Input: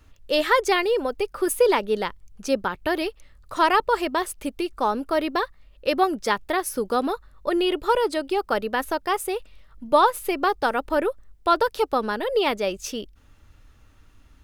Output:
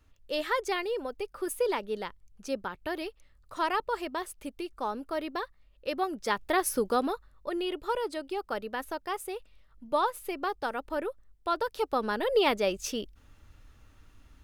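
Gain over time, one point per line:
6.07 s -10 dB
6.67 s -0.5 dB
7.48 s -10 dB
11.58 s -10 dB
12.26 s -2.5 dB

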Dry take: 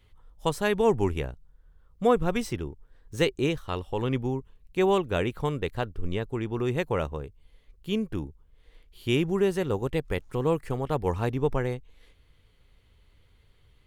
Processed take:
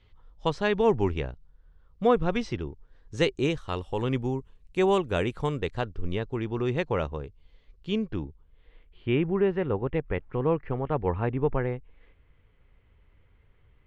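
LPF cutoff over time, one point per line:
LPF 24 dB/oct
2.56 s 5300 Hz
3.84 s 9400 Hz
5.28 s 9400 Hz
6.23 s 5700 Hz
7.89 s 5700 Hz
9.1 s 2500 Hz

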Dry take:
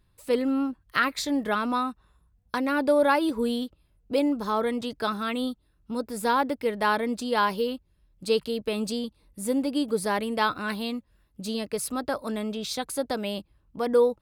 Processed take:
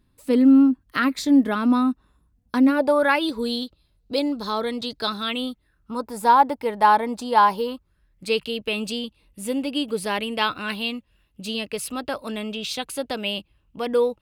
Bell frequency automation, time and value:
bell +13 dB 0.56 oct
2.67 s 260 Hz
2.86 s 770 Hz
3.28 s 4100 Hz
5.16 s 4100 Hz
6.11 s 880 Hz
7.58 s 880 Hz
8.45 s 2800 Hz

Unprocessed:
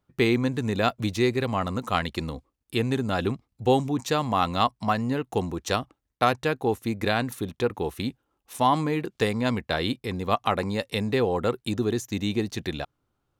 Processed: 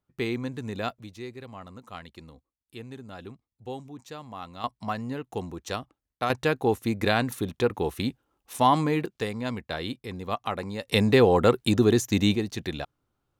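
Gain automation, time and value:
-7.5 dB
from 0.99 s -16 dB
from 4.64 s -6.5 dB
from 6.3 s +1 dB
from 9.06 s -6 dB
from 10.88 s +5.5 dB
from 12.35 s -1.5 dB

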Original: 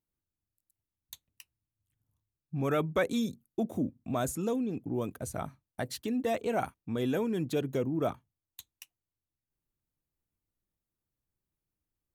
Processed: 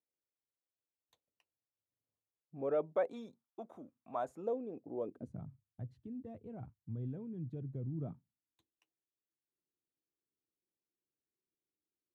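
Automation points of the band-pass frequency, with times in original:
band-pass, Q 2.5
2.68 s 520 Hz
3.86 s 1400 Hz
4.47 s 570 Hz
5 s 570 Hz
5.47 s 110 Hz
7.84 s 110 Hz
8.71 s 380 Hz

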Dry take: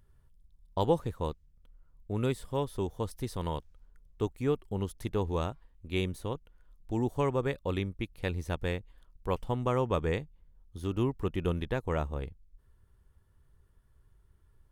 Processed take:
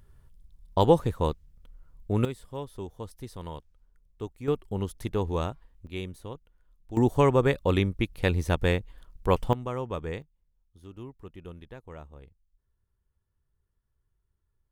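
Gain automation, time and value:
+7 dB
from 2.25 s -5 dB
from 4.48 s +2.5 dB
from 5.87 s -4.5 dB
from 6.97 s +8 dB
from 9.53 s -4 dB
from 10.22 s -13 dB

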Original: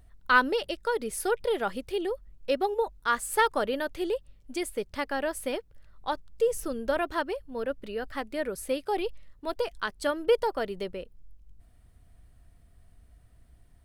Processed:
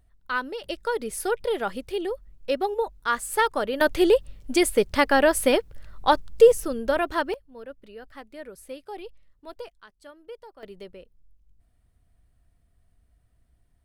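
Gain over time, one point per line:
-6.5 dB
from 0.64 s +1.5 dB
from 3.81 s +11.5 dB
from 6.52 s +4 dB
from 7.34 s -9 dB
from 9.7 s -18.5 dB
from 10.63 s -7.5 dB

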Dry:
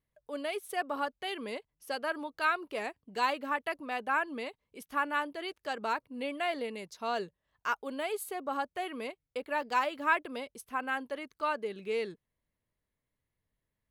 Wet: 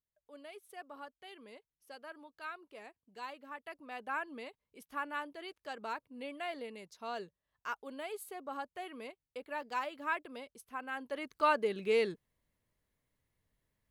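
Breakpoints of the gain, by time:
3.46 s -15 dB
4.08 s -7.5 dB
10.91 s -7.5 dB
11.34 s +3.5 dB

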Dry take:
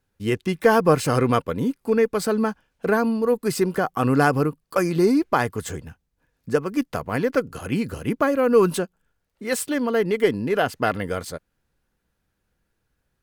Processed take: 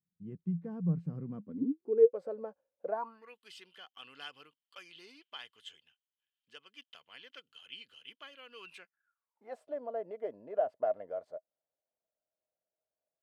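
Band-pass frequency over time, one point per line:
band-pass, Q 13
1.27 s 170 Hz
2.19 s 550 Hz
2.86 s 550 Hz
3.37 s 3100 Hz
8.6 s 3100 Hz
9.59 s 630 Hz

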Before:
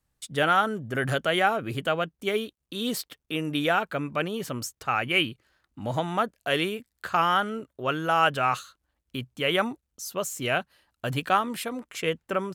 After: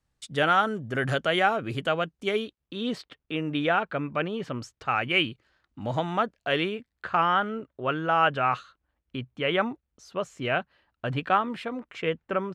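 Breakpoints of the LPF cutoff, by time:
2.32 s 7000 Hz
2.74 s 3100 Hz
4.51 s 3100 Hz
5.16 s 5400 Hz
6.03 s 5400 Hz
7.08 s 2800 Hz

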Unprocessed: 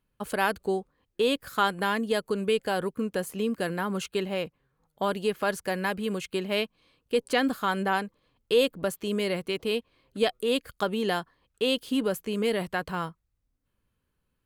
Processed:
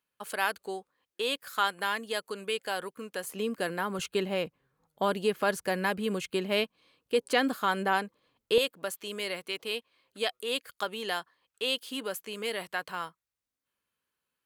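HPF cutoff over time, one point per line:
HPF 6 dB/oct
1100 Hz
from 3.24 s 370 Hz
from 3.99 s 120 Hz
from 6.64 s 270 Hz
from 8.58 s 1100 Hz

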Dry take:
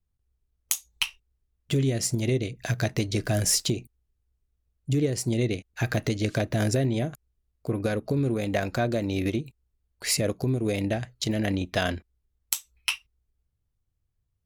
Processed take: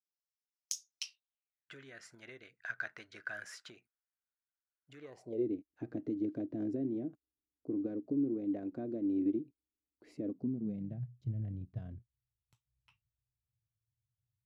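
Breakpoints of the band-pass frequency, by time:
band-pass, Q 6.5
1.03 s 5400 Hz
1.72 s 1500 Hz
4.98 s 1500 Hz
5.47 s 300 Hz
10.22 s 300 Hz
11.15 s 120 Hz

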